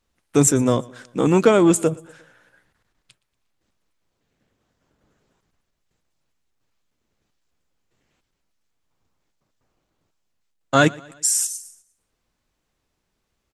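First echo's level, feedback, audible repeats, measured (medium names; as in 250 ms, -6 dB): -23.5 dB, 51%, 2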